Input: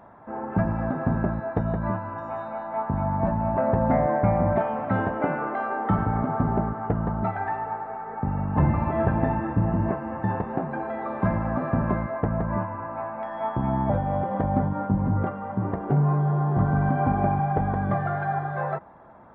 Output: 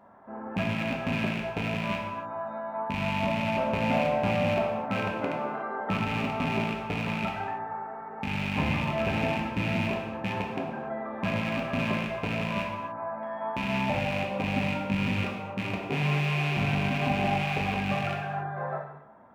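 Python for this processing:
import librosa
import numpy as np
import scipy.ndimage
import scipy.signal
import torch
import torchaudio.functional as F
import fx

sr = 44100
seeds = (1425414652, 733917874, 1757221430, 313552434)

y = fx.rattle_buzz(x, sr, strikes_db=-27.0, level_db=-16.0)
y = fx.low_shelf(y, sr, hz=73.0, db=-10.5)
y = fx.rev_gated(y, sr, seeds[0], gate_ms=320, shape='falling', drr_db=-1.0)
y = F.gain(torch.from_numpy(y), -7.5).numpy()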